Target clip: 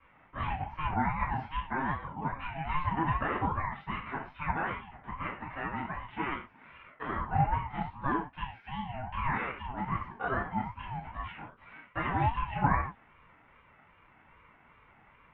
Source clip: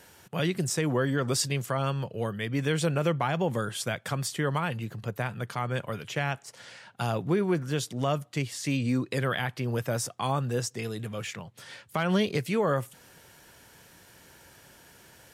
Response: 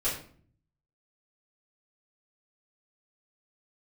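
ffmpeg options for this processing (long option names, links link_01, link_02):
-filter_complex "[0:a]highpass=frequency=320:width_type=q:width=0.5412,highpass=frequency=320:width_type=q:width=1.307,lowpass=frequency=2200:width_type=q:width=0.5176,lowpass=frequency=2200:width_type=q:width=0.7071,lowpass=frequency=2200:width_type=q:width=1.932,afreqshift=60[link_01];[1:a]atrim=start_sample=2205,atrim=end_sample=6174,asetrate=43218,aresample=44100[link_02];[link_01][link_02]afir=irnorm=-1:irlink=0,aeval=exprs='val(0)*sin(2*PI*430*n/s+430*0.25/2.5*sin(2*PI*2.5*n/s))':channel_layout=same,volume=-6.5dB"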